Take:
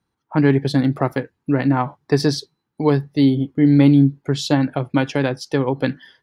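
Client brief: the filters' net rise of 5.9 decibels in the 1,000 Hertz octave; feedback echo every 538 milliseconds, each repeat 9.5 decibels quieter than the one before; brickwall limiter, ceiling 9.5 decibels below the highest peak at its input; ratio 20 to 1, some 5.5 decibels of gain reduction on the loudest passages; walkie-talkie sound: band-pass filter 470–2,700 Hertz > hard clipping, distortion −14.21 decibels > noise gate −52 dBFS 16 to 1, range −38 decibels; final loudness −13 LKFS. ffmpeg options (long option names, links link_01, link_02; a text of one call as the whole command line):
ffmpeg -i in.wav -af "equalizer=frequency=1000:width_type=o:gain=8,acompressor=threshold=-13dB:ratio=20,alimiter=limit=-11dB:level=0:latency=1,highpass=470,lowpass=2700,aecho=1:1:538|1076|1614|2152:0.335|0.111|0.0365|0.012,asoftclip=type=hard:threshold=-21dB,agate=range=-38dB:threshold=-52dB:ratio=16,volume=17dB" out.wav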